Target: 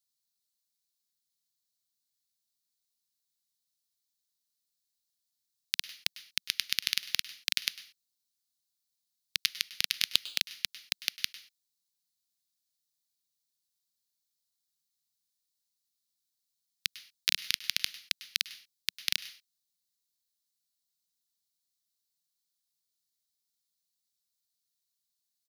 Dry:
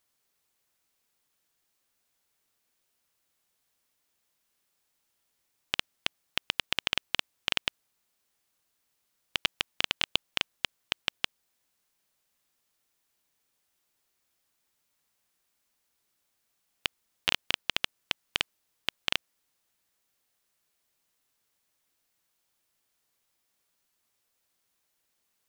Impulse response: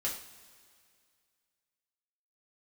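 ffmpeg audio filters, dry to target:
-filter_complex "[0:a]highpass=f=150:p=1,asplit=2[a][b];[b]adynamicsmooth=sensitivity=0.5:basefreq=4.9k,volume=-0.5dB[c];[a][c]amix=inputs=2:normalize=0,firequalizer=gain_entry='entry(190,0);entry(430,-25);entry(2600,-11);entry(4000,10)':delay=0.05:min_phase=1,aeval=exprs='1.58*(cos(1*acos(clip(val(0)/1.58,-1,1)))-cos(1*PI/2))+0.2*(cos(3*acos(clip(val(0)/1.58,-1,1)))-cos(3*PI/2))+0.158*(cos(5*acos(clip(val(0)/1.58,-1,1)))-cos(5*PI/2))+0.316*(cos(7*acos(clip(val(0)/1.58,-1,1)))-cos(7*PI/2))+0.0178*(cos(8*acos(clip(val(0)/1.58,-1,1)))-cos(8*PI/2))':c=same,equalizer=f=1.9k:t=o:w=1.2:g=5,asplit=2[d][e];[1:a]atrim=start_sample=2205,afade=t=out:st=0.19:d=0.01,atrim=end_sample=8820,adelay=99[f];[e][f]afir=irnorm=-1:irlink=0,volume=-17.5dB[g];[d][g]amix=inputs=2:normalize=0,volume=-5dB"

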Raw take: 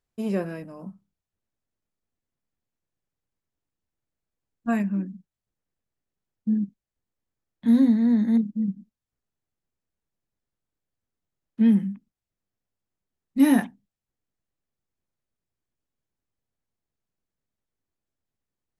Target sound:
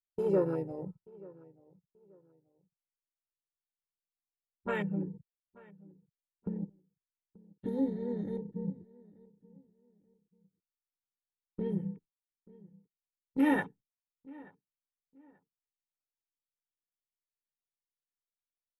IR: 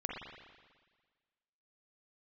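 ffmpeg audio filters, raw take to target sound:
-filter_complex "[0:a]afwtdn=0.0158,agate=range=-14dB:threshold=-45dB:ratio=16:detection=peak,asplit=2[a][b];[b]asetrate=37084,aresample=44100,atempo=1.18921,volume=-11dB[c];[a][c]amix=inputs=2:normalize=0,acompressor=threshold=-26dB:ratio=2,aecho=1:1:2.2:0.92,asplit=2[d][e];[e]adelay=883,lowpass=f=1.7k:p=1,volume=-22dB,asplit=2[f][g];[g]adelay=883,lowpass=f=1.7k:p=1,volume=0.29[h];[d][f][h]amix=inputs=3:normalize=0,volume=1dB"

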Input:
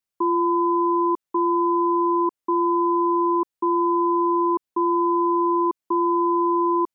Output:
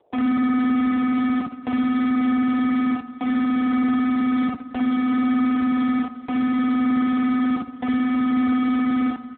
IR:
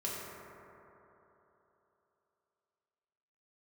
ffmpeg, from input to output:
-filter_complex "[0:a]areverse,lowpass=f=1k:w=0.5412,lowpass=f=1k:w=1.3066,acrossover=split=390|480[a][b][c];[c]acompressor=mode=upward:threshold=-31dB:ratio=2.5[d];[a][b][d]amix=inputs=3:normalize=0,volume=30.5dB,asoftclip=hard,volume=-30.5dB,adynamicsmooth=sensitivity=6.5:basefreq=550,asplit=2[e][f];[f]adelay=41,volume=-3dB[g];[e][g]amix=inputs=2:normalize=0,aecho=1:1:561|1122:0.119|0.0261,asplit=2[h][i];[1:a]atrim=start_sample=2205,afade=t=out:st=0.28:d=0.01,atrim=end_sample=12789[j];[i][j]afir=irnorm=-1:irlink=0,volume=-11dB[k];[h][k]amix=inputs=2:normalize=0,asetrate=32667,aresample=44100,volume=8dB" -ar 8000 -c:a libopencore_amrnb -b:a 5900

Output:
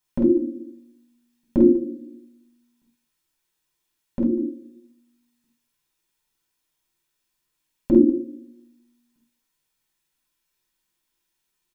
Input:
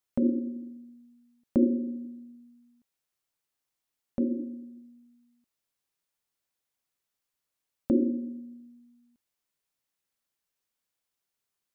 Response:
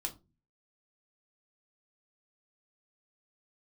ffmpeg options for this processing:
-filter_complex "[0:a]equalizer=f=690:w=3.3:g=-8.5,aecho=1:1:48|195:0.708|0.1[a];[1:a]atrim=start_sample=2205,atrim=end_sample=4410[b];[a][b]afir=irnorm=-1:irlink=0,volume=7dB"

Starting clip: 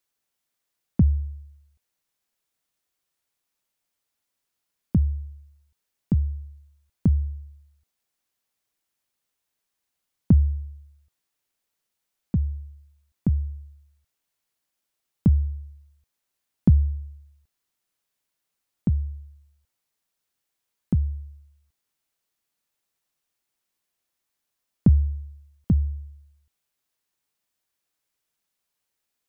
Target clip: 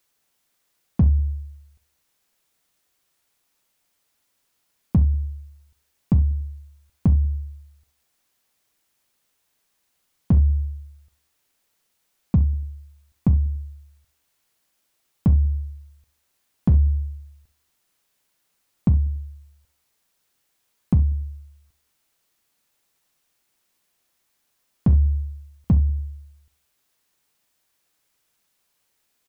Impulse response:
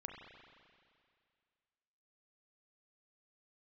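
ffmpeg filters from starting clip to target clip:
-filter_complex "[0:a]alimiter=limit=-19dB:level=0:latency=1:release=328,volume=20.5dB,asoftclip=hard,volume=-20.5dB,asplit=2[a][b];[b]adelay=95,lowpass=f=840:p=1,volume=-24dB,asplit=2[c][d];[d]adelay=95,lowpass=f=840:p=1,volume=0.43,asplit=2[e][f];[f]adelay=95,lowpass=f=840:p=1,volume=0.43[g];[a][c][e][g]amix=inputs=4:normalize=0,asplit=2[h][i];[1:a]atrim=start_sample=2205,atrim=end_sample=3528[j];[i][j]afir=irnorm=-1:irlink=0,volume=4.5dB[k];[h][k]amix=inputs=2:normalize=0,volume=4dB"

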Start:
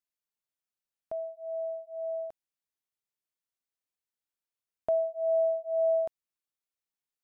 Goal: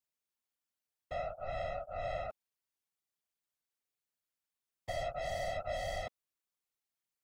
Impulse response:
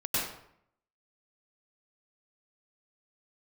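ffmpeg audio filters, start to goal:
-af "aeval=exprs='(tanh(126*val(0)+0.75)-tanh(0.75))/126':c=same,afftfilt=real='hypot(re,im)*cos(2*PI*random(0))':imag='hypot(re,im)*sin(2*PI*random(1))':win_size=512:overlap=0.75,volume=10.5dB"

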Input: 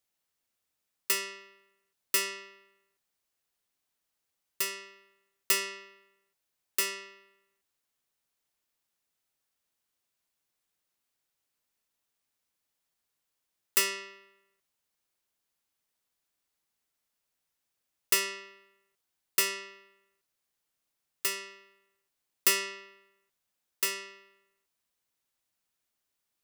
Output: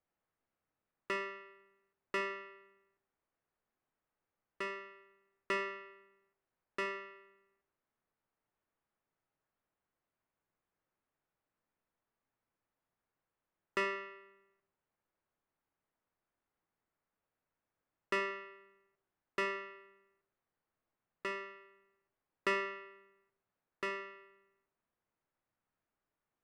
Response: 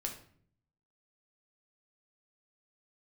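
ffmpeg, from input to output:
-filter_complex "[0:a]lowpass=1.7k,asplit=2[a][b];[1:a]atrim=start_sample=2205,lowpass=2.7k[c];[b][c]afir=irnorm=-1:irlink=0,volume=-3dB[d];[a][d]amix=inputs=2:normalize=0,volume=-1.5dB"

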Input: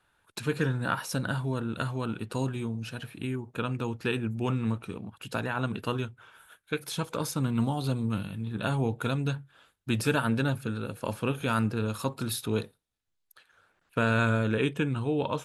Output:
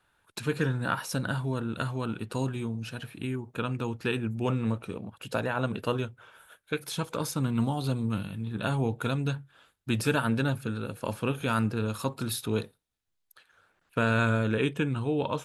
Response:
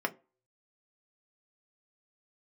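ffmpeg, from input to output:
-filter_complex "[0:a]asettb=1/sr,asplit=3[a][b][c];[a]atrim=end=4.454[d];[b]atrim=start=4.45:end=6.73,asetpts=PTS-STARTPTS,afade=t=in:d=0.004:c=qsin,afade=t=out:st=2.276:d=0.004:c=qsin,equalizer=f=550:t=o:w=0.6:g=6.5[e];[c]atrim=start=6.726[f];[d][e]acrossfade=d=0.004:c1=hsin:c2=qsin[g];[g][f]acrossfade=d=0.004:c1=qsin:c2=hsin"

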